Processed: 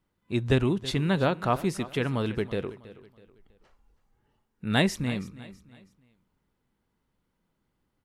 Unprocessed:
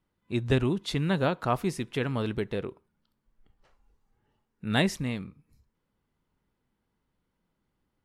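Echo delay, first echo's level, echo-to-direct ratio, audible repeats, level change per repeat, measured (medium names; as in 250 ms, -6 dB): 325 ms, -17.0 dB, -16.5 dB, 3, -9.0 dB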